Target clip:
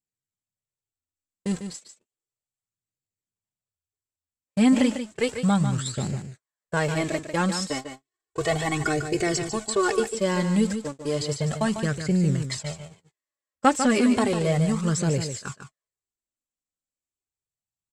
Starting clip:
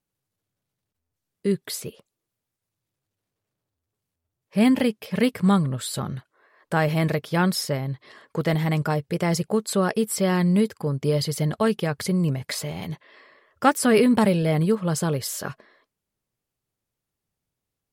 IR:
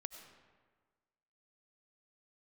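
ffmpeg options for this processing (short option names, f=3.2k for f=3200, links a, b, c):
-filter_complex "[0:a]aeval=exprs='val(0)+0.5*0.0299*sgn(val(0))':c=same,lowpass=f=7.7k:t=q:w=7.4,acrossover=split=4900[a][b];[b]acompressor=threshold=-33dB:ratio=4:attack=1:release=60[c];[a][c]amix=inputs=2:normalize=0,flanger=delay=0.4:depth=3.4:regen=-8:speed=0.33:shape=sinusoidal,agate=range=-59dB:threshold=-29dB:ratio=16:detection=peak,asettb=1/sr,asplit=3[d][e][f];[d]atrim=end=7.594[g];[e]atrim=start=7.59:end=10,asetpts=PTS-STARTPTS,afade=t=in:d=0.004:c=qsin,afade=t=out:st=2.406:d=0.004:c=qsin,aecho=1:1:2.7:0.91,atrim=end_sample=106281[h];[f]atrim=start=9.996[i];[g][h]acrossfade=d=0.004:c1=hsin:c2=qsin[j];[j][i]acrossfade=d=0.004:c1=qsin:c2=hsin,aecho=1:1:148:0.376"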